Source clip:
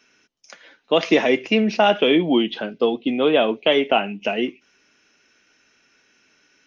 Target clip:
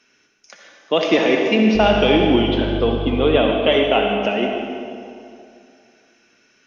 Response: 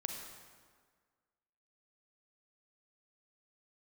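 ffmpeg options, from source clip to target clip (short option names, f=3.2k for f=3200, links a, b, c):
-filter_complex "[0:a]asettb=1/sr,asplit=3[a][b][c];[a]atrim=end=1.754[d];[b]atrim=start=1.75:end=3.38,asetpts=PTS-STARTPTS,afade=t=in:d=0.004:c=qsin,afade=t=out:st=1.626:d=0.004:c=qsin,aeval=exprs='val(0)+0.0447*(sin(2*PI*50*n/s)+sin(2*PI*2*50*n/s)/2+sin(2*PI*3*50*n/s)/3+sin(2*PI*4*50*n/s)/4+sin(2*PI*5*50*n/s)/5)':c=same[e];[c]atrim=start=3.376[f];[d][e]acrossfade=d=0.004:c1=hsin:c2=qsin[g];[g][f]acrossfade=d=0.004:c1=qsin:c2=hsin[h];[1:a]atrim=start_sample=2205,asetrate=28224,aresample=44100[i];[h][i]afir=irnorm=-1:irlink=0,volume=-1dB"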